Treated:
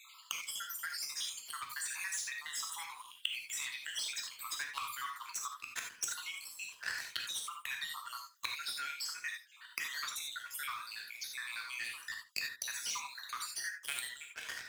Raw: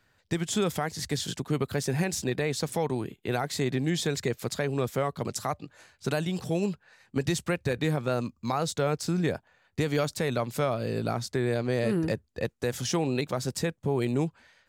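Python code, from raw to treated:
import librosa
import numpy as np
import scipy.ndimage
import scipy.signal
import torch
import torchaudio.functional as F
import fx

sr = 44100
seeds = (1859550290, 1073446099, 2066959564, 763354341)

p1 = fx.spec_dropout(x, sr, seeds[0], share_pct=64)
p2 = scipy.signal.sosfilt(scipy.signal.butter(12, 1000.0, 'highpass', fs=sr, output='sos'), p1)
p3 = fx.high_shelf(p2, sr, hz=10000.0, db=6.0)
p4 = fx.leveller(p3, sr, passes=3)
p5 = fx.gate_flip(p4, sr, shuts_db=-34.0, range_db=-27)
p6 = p5 + fx.echo_single(p5, sr, ms=75, db=-17.5, dry=0)
p7 = fx.rev_gated(p6, sr, seeds[1], gate_ms=110, shape='flat', drr_db=1.0)
p8 = fx.band_squash(p7, sr, depth_pct=40)
y = p8 * 10.0 ** (14.5 / 20.0)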